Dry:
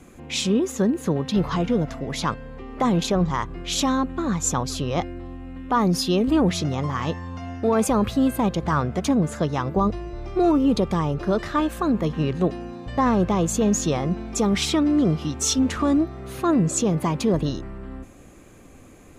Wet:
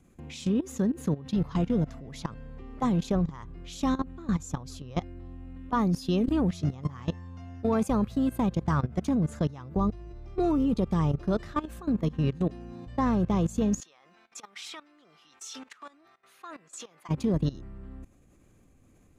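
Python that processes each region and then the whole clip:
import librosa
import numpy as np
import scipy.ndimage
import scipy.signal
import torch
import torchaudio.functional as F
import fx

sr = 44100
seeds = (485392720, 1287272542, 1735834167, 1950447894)

y = fx.chain(x, sr, fx.highpass(hz=1500.0, slope=12),
    fx.high_shelf(hz=3000.0, db=-10.0),
    fx.sustainer(db_per_s=81.0), at=(13.8, 17.09))
y = fx.bass_treble(y, sr, bass_db=8, treble_db=2)
y = fx.level_steps(y, sr, step_db=18)
y = y * librosa.db_to_amplitude(-6.0)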